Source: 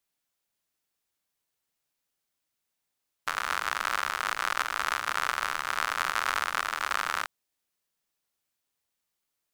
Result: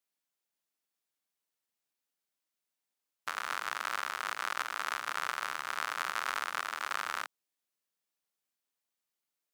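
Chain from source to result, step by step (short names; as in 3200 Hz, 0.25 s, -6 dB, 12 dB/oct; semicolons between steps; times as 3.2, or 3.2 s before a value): HPF 170 Hz 12 dB/oct; gain -6 dB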